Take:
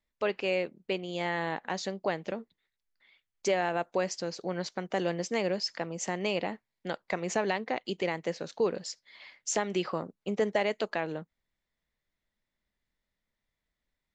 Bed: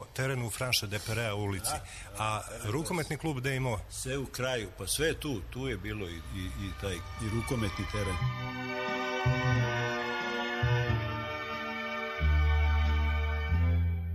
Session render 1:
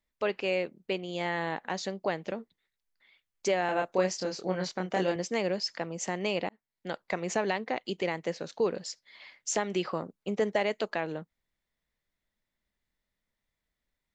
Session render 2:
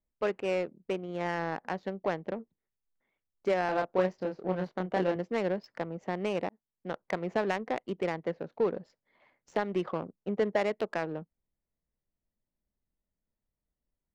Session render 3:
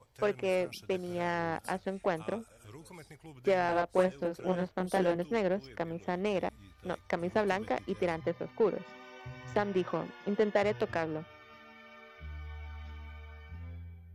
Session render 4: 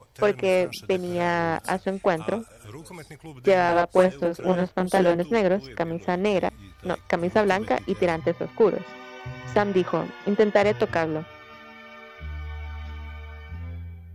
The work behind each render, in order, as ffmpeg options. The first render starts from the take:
-filter_complex "[0:a]asettb=1/sr,asplit=3[s0][s1][s2];[s0]atrim=end=3.664[s3];[s1]atrim=start=3.66:end=5.16,asetpts=PTS-STARTPTS,afade=t=in:d=0.004:c=qsin,afade=t=out:st=1.496:d=0.004:c=qsin,asplit=2[s4][s5];[s5]adelay=27,volume=0.75[s6];[s4][s6]amix=inputs=2:normalize=0,atrim=end_sample=66150[s7];[s2]atrim=start=5.156[s8];[s3][s7]acrossfade=d=0.004:c1=hsin:c2=qsin[s9];[s9][s8]acrossfade=d=0.004:c1=qsin:c2=hsin,asplit=2[s10][s11];[s10]atrim=end=6.49,asetpts=PTS-STARTPTS,afade=t=out:st=6.486:d=0.004:c=hsin[s12];[s11]atrim=start=6.49,asetpts=PTS-STARTPTS,afade=t=in:d=0.47[s13];[s12][s13]concat=n=2:v=0:a=1"
-af "adynamicsmooth=sensitivity=2:basefreq=810"
-filter_complex "[1:a]volume=0.133[s0];[0:a][s0]amix=inputs=2:normalize=0"
-af "volume=2.82"

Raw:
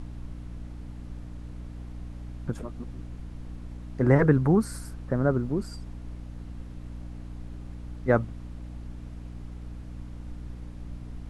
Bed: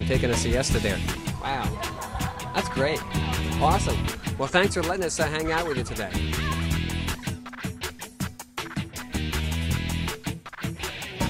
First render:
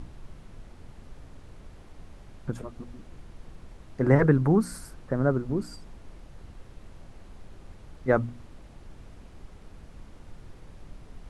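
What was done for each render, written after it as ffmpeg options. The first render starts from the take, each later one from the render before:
-af "bandreject=f=60:t=h:w=4,bandreject=f=120:t=h:w=4,bandreject=f=180:t=h:w=4,bandreject=f=240:t=h:w=4,bandreject=f=300:t=h:w=4"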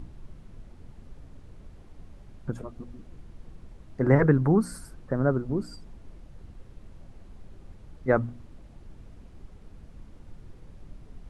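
-af "afftdn=nr=6:nf=-49"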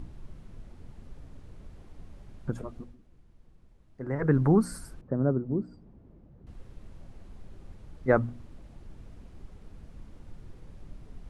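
-filter_complex "[0:a]asettb=1/sr,asplit=3[s0][s1][s2];[s0]atrim=end=5.014[s3];[s1]atrim=start=5.01:end=6.47,asetpts=PTS-STARTPTS,afade=t=in:d=0.004:c=qsin,afade=t=out:st=1.456:d=0.004:c=qsin,bandpass=f=220:t=q:w=0.56[s4];[s2]atrim=start=6.466[s5];[s3][s4]acrossfade=d=0.004:c1=hsin:c2=qsin[s6];[s6][s5]acrossfade=d=0.004:c1=qsin:c2=hsin,asplit=3[s7][s8][s9];[s7]atrim=end=2.97,asetpts=PTS-STARTPTS,afade=t=out:st=2.76:d=0.21:silence=0.237137[s10];[s8]atrim=start=2.97:end=4.18,asetpts=PTS-STARTPTS,volume=0.237[s11];[s9]atrim=start=4.18,asetpts=PTS-STARTPTS,afade=t=in:d=0.21:silence=0.237137[s12];[s10][s11][s12]concat=n=3:v=0:a=1"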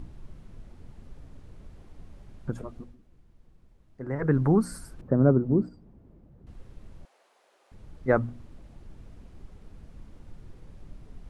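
-filter_complex "[0:a]asettb=1/sr,asplit=3[s0][s1][s2];[s0]atrim=end=4.994[s3];[s1]atrim=start=4.99:end=5.69,asetpts=PTS-STARTPTS,afade=t=in:d=0.004:c=qsin,afade=t=out:st=0.696:d=0.004:c=qsin,acontrast=61[s4];[s2]atrim=start=5.686[s5];[s3][s4]acrossfade=d=0.004:c1=hsin:c2=qsin[s6];[s6][s5]acrossfade=d=0.004:c1=qsin:c2=hsin,asettb=1/sr,asplit=3[s7][s8][s9];[s7]atrim=end=7.054[s10];[s8]atrim=start=7.05:end=7.72,asetpts=PTS-STARTPTS,afade=t=in:d=0.004:c=qsin,afade=t=out:st=0.666:d=0.004:c=qsin,highpass=f=540:w=0.5412,highpass=f=540:w=1.3066[s11];[s9]atrim=start=7.716[s12];[s10][s11]acrossfade=d=0.004:c1=hsin:c2=qsin[s13];[s13][s12]acrossfade=d=0.004:c1=qsin:c2=hsin"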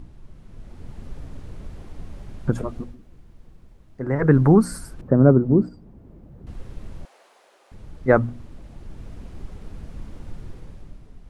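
-af "dynaudnorm=f=110:g=13:m=3.35"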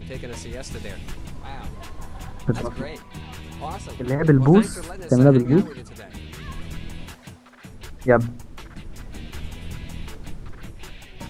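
-filter_complex "[1:a]volume=0.282[s0];[0:a][s0]amix=inputs=2:normalize=0"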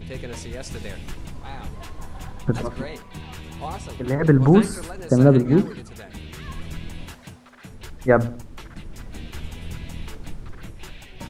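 -filter_complex "[0:a]asplit=2[s0][s1];[s1]adelay=62,lowpass=f=1700:p=1,volume=0.126,asplit=2[s2][s3];[s3]adelay=62,lowpass=f=1700:p=1,volume=0.52,asplit=2[s4][s5];[s5]adelay=62,lowpass=f=1700:p=1,volume=0.52,asplit=2[s6][s7];[s7]adelay=62,lowpass=f=1700:p=1,volume=0.52[s8];[s0][s2][s4][s6][s8]amix=inputs=5:normalize=0"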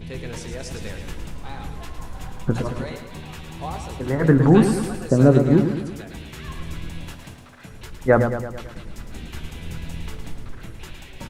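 -filter_complex "[0:a]asplit=2[s0][s1];[s1]adelay=18,volume=0.251[s2];[s0][s2]amix=inputs=2:normalize=0,aecho=1:1:110|220|330|440|550|660|770:0.398|0.219|0.12|0.0662|0.0364|0.02|0.011"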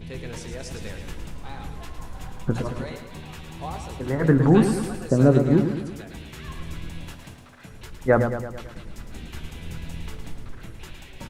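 -af "volume=0.75"

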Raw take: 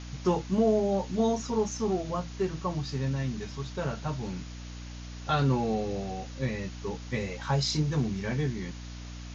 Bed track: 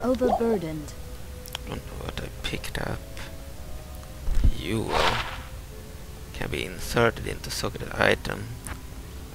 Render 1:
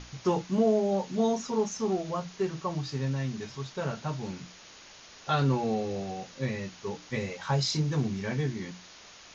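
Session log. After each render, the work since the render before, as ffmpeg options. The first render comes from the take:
-af "bandreject=f=60:t=h:w=6,bandreject=f=120:t=h:w=6,bandreject=f=180:t=h:w=6,bandreject=f=240:t=h:w=6,bandreject=f=300:t=h:w=6"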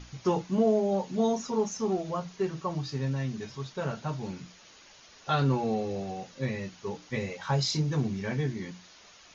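-af "afftdn=nr=6:nf=-51"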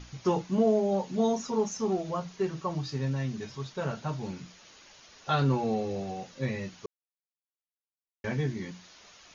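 -filter_complex "[0:a]asplit=3[s0][s1][s2];[s0]atrim=end=6.86,asetpts=PTS-STARTPTS,afade=t=out:st=6.856:d=0.004:c=hsin[s3];[s1]atrim=start=6.86:end=8.24,asetpts=PTS-STARTPTS,volume=0[s4];[s2]atrim=start=8.24,asetpts=PTS-STARTPTS,afade=t=in:d=0.004:c=hsin[s5];[s3][s4][s5]concat=n=3:v=0:a=1"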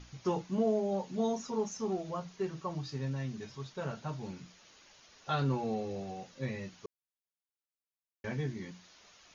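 -af "volume=0.531"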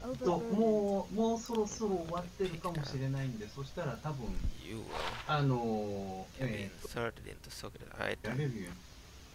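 -filter_complex "[1:a]volume=0.158[s0];[0:a][s0]amix=inputs=2:normalize=0"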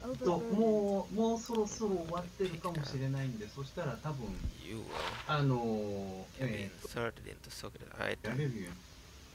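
-af "highpass=44,bandreject=f=740:w=12"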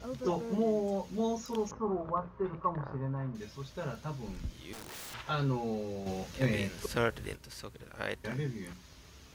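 -filter_complex "[0:a]asettb=1/sr,asplit=3[s0][s1][s2];[s0]atrim=end=1.714[s3];[s1]atrim=start=1.71:end=3.35,asetpts=PTS-STARTPTS,afade=t=in:d=0.004:c=qsin,afade=t=out:st=1.636:d=0.004:c=qsin,lowpass=f=1100:t=q:w=3[s4];[s2]atrim=start=3.346[s5];[s3][s4]acrossfade=d=0.004:c1=hsin:c2=qsin[s6];[s6][s5]acrossfade=d=0.004:c1=qsin:c2=hsin,asettb=1/sr,asplit=3[s7][s8][s9];[s7]atrim=end=4.734[s10];[s8]atrim=start=4.73:end=5.14,asetpts=PTS-STARTPTS,afade=t=in:d=0.004:c=qsin,afade=t=out:st=0.406:d=0.004:c=qsin,aeval=exprs='(mod(100*val(0)+1,2)-1)/100':c=same[s11];[s9]atrim=start=5.136[s12];[s10][s11]acrossfade=d=0.004:c1=hsin:c2=qsin[s13];[s13][s12]acrossfade=d=0.004:c1=qsin:c2=hsin,asettb=1/sr,asplit=3[s14][s15][s16];[s14]atrim=end=6.064[s17];[s15]atrim=start=6.06:end=7.36,asetpts=PTS-STARTPTS,afade=t=in:d=0.004:c=qsin,afade=t=out:st=1.296:d=0.004:c=qsin,acontrast=89[s18];[s16]atrim=start=7.356[s19];[s17][s18]acrossfade=d=0.004:c1=hsin:c2=qsin[s20];[s20][s19]acrossfade=d=0.004:c1=qsin:c2=hsin"

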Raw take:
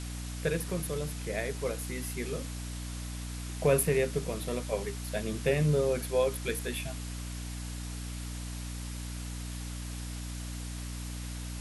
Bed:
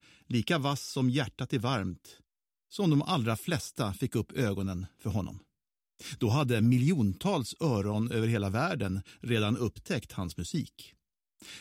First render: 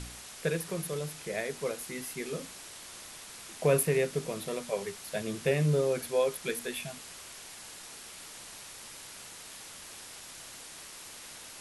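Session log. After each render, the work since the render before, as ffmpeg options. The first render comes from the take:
-af "bandreject=f=60:t=h:w=4,bandreject=f=120:t=h:w=4,bandreject=f=180:t=h:w=4,bandreject=f=240:t=h:w=4,bandreject=f=300:t=h:w=4"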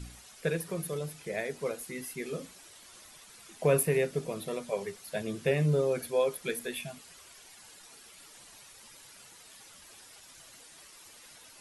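-af "afftdn=nr=10:nf=-47"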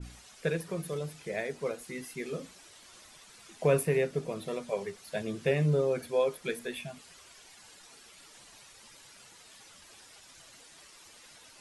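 -af "lowpass=8900,adynamicequalizer=threshold=0.00501:dfrequency=2400:dqfactor=0.7:tfrequency=2400:tqfactor=0.7:attack=5:release=100:ratio=0.375:range=2:mode=cutabove:tftype=highshelf"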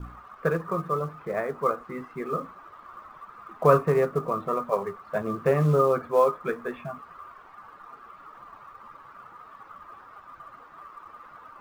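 -filter_complex "[0:a]lowpass=f=1200:t=q:w=11,asplit=2[s0][s1];[s1]acrusher=bits=5:mode=log:mix=0:aa=0.000001,volume=0.631[s2];[s0][s2]amix=inputs=2:normalize=0"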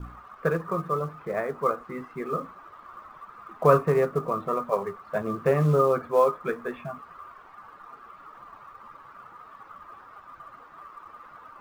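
-af anull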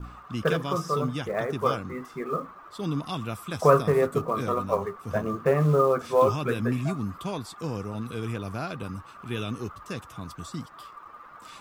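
-filter_complex "[1:a]volume=0.668[s0];[0:a][s0]amix=inputs=2:normalize=0"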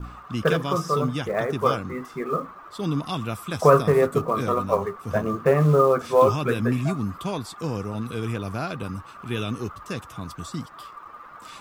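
-af "volume=1.5,alimiter=limit=0.794:level=0:latency=1"

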